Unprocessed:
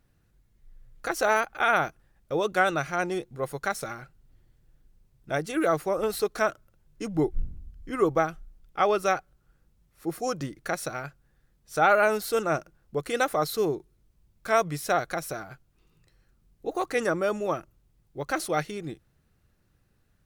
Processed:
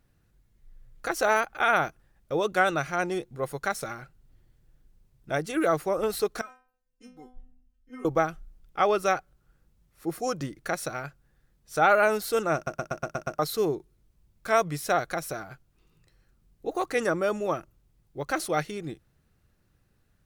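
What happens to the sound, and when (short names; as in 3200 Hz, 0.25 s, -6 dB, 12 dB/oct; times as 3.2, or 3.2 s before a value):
6.41–8.05 metallic resonator 250 Hz, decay 0.43 s, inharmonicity 0.002
12.55 stutter in place 0.12 s, 7 plays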